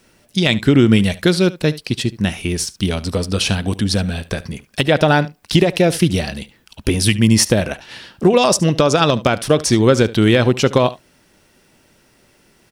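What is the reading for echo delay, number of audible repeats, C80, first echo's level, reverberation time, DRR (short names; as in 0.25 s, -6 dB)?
72 ms, 1, none, -18.5 dB, none, none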